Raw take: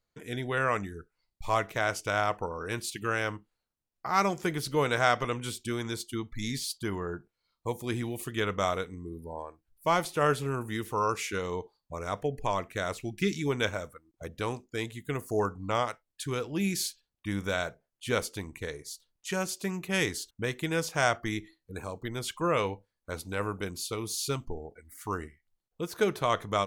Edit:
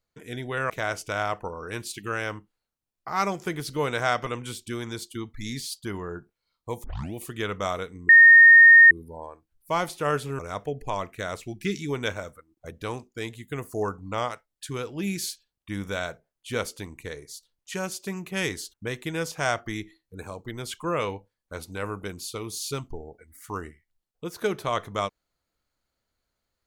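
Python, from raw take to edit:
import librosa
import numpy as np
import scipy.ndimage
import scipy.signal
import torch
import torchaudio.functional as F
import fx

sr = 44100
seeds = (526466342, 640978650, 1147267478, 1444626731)

y = fx.edit(x, sr, fx.cut(start_s=0.7, length_s=0.98),
    fx.tape_start(start_s=7.82, length_s=0.3),
    fx.insert_tone(at_s=9.07, length_s=0.82, hz=1840.0, db=-8.0),
    fx.cut(start_s=10.55, length_s=1.41), tone=tone)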